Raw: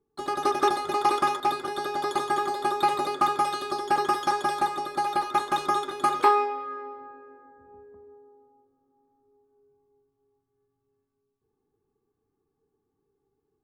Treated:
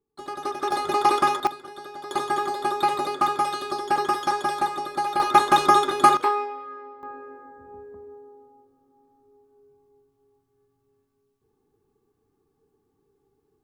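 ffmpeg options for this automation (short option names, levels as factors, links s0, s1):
-af "asetnsamples=n=441:p=0,asendcmd='0.72 volume volume 3.5dB;1.47 volume volume -9dB;2.11 volume volume 1dB;5.2 volume volume 8.5dB;6.17 volume volume -3dB;7.03 volume volume 7dB',volume=0.562"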